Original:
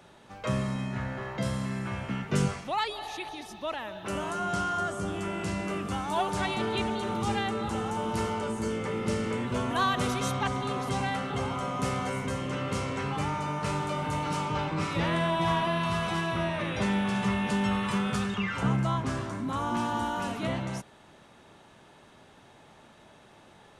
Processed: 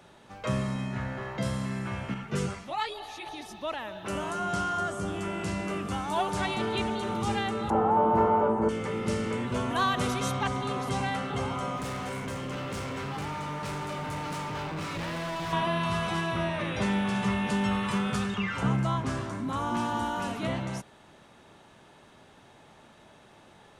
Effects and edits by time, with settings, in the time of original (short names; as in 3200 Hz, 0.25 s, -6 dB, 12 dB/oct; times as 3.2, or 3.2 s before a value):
2.14–3.26 ensemble effect
7.7–8.69 EQ curve 120 Hz 0 dB, 840 Hz +12 dB, 5300 Hz -22 dB
11.77–15.53 overloaded stage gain 32 dB